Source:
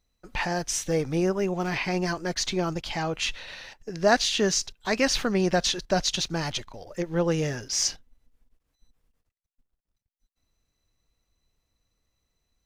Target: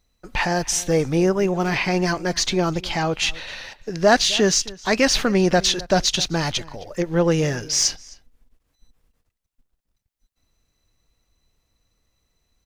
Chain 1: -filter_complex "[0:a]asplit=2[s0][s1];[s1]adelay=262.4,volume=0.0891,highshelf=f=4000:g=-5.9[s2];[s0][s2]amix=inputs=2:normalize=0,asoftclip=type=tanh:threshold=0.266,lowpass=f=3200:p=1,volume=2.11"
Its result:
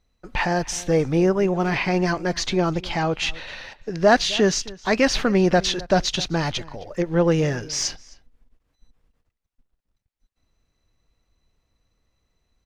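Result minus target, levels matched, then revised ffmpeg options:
4 kHz band -2.5 dB
-filter_complex "[0:a]asplit=2[s0][s1];[s1]adelay=262.4,volume=0.0891,highshelf=f=4000:g=-5.9[s2];[s0][s2]amix=inputs=2:normalize=0,asoftclip=type=tanh:threshold=0.266,volume=2.11"

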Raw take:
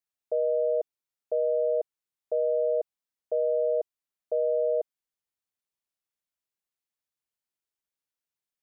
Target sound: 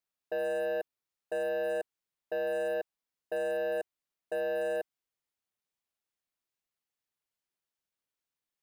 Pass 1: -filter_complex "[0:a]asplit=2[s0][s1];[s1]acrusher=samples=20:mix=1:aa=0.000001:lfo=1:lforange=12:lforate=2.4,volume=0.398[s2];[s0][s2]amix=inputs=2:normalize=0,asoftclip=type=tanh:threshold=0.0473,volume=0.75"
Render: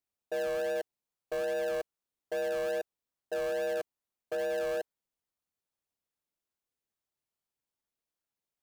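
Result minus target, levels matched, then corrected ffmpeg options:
decimation with a swept rate: distortion +18 dB
-filter_complex "[0:a]asplit=2[s0][s1];[s1]acrusher=samples=4:mix=1:aa=0.000001:lfo=1:lforange=2.4:lforate=2.4,volume=0.398[s2];[s0][s2]amix=inputs=2:normalize=0,asoftclip=type=tanh:threshold=0.0473,volume=0.75"

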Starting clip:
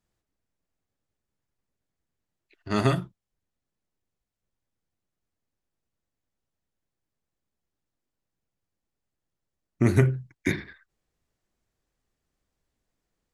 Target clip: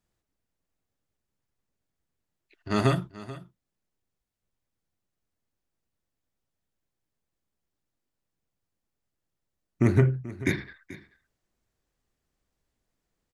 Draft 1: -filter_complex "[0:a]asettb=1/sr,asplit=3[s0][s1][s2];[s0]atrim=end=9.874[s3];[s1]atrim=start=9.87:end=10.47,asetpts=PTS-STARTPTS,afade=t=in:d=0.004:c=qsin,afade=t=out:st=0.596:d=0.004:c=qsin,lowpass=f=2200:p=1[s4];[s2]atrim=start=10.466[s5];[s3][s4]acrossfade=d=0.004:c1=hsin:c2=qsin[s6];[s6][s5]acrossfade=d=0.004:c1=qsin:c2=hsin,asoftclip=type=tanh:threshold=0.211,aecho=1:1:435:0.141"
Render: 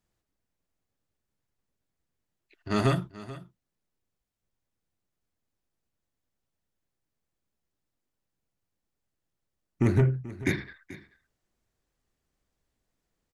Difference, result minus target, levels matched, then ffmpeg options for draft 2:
saturation: distortion +13 dB
-filter_complex "[0:a]asettb=1/sr,asplit=3[s0][s1][s2];[s0]atrim=end=9.874[s3];[s1]atrim=start=9.87:end=10.47,asetpts=PTS-STARTPTS,afade=t=in:d=0.004:c=qsin,afade=t=out:st=0.596:d=0.004:c=qsin,lowpass=f=2200:p=1[s4];[s2]atrim=start=10.466[s5];[s3][s4]acrossfade=d=0.004:c1=hsin:c2=qsin[s6];[s6][s5]acrossfade=d=0.004:c1=qsin:c2=hsin,asoftclip=type=tanh:threshold=0.596,aecho=1:1:435:0.141"

